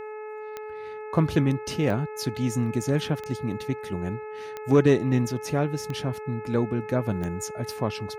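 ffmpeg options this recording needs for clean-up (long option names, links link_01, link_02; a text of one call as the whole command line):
ffmpeg -i in.wav -af "adeclick=threshold=4,bandreject=frequency=428.8:width_type=h:width=4,bandreject=frequency=857.6:width_type=h:width=4,bandreject=frequency=1286.4:width_type=h:width=4,bandreject=frequency=1715.2:width_type=h:width=4,bandreject=frequency=2144:width_type=h:width=4,bandreject=frequency=2572.8:width_type=h:width=4" out.wav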